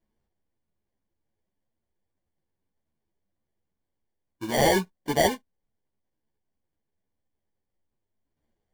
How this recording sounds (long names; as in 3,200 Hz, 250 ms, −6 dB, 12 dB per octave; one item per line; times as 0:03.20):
aliases and images of a low sample rate 1,300 Hz, jitter 0%
a shimmering, thickened sound